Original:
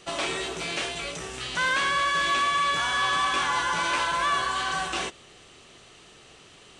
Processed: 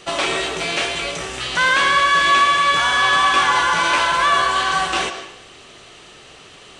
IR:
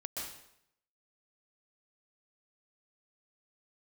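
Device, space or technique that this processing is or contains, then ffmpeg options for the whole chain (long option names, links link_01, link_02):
filtered reverb send: -filter_complex "[0:a]asplit=2[link_01][link_02];[link_02]highpass=290,lowpass=5900[link_03];[1:a]atrim=start_sample=2205[link_04];[link_03][link_04]afir=irnorm=-1:irlink=0,volume=-6dB[link_05];[link_01][link_05]amix=inputs=2:normalize=0,volume=6.5dB"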